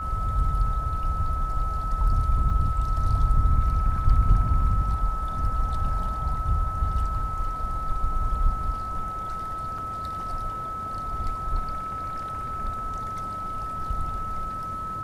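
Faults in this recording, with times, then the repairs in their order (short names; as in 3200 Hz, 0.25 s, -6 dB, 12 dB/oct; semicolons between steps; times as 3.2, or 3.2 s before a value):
tone 1300 Hz -30 dBFS
2.5 gap 2.7 ms
9.78 gap 3.8 ms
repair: notch 1300 Hz, Q 30; interpolate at 2.5, 2.7 ms; interpolate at 9.78, 3.8 ms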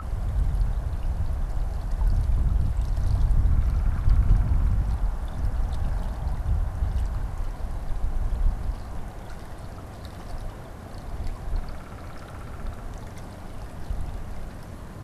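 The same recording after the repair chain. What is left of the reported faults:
none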